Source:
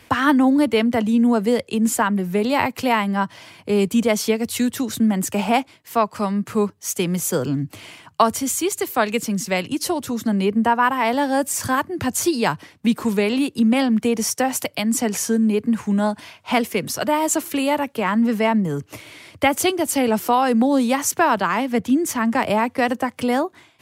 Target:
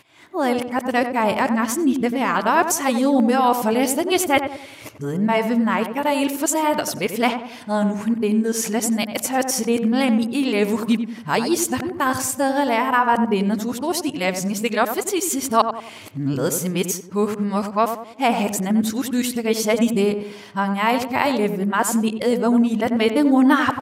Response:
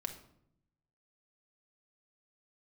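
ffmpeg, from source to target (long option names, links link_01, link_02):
-filter_complex "[0:a]areverse,lowshelf=frequency=93:gain=-9,asplit=2[link_01][link_02];[link_02]adelay=92,lowpass=frequency=1200:poles=1,volume=-7dB,asplit=2[link_03][link_04];[link_04]adelay=92,lowpass=frequency=1200:poles=1,volume=0.46,asplit=2[link_05][link_06];[link_06]adelay=92,lowpass=frequency=1200:poles=1,volume=0.46,asplit=2[link_07][link_08];[link_08]adelay=92,lowpass=frequency=1200:poles=1,volume=0.46,asplit=2[link_09][link_10];[link_10]adelay=92,lowpass=frequency=1200:poles=1,volume=0.46[link_11];[link_01][link_03][link_05][link_07][link_09][link_11]amix=inputs=6:normalize=0"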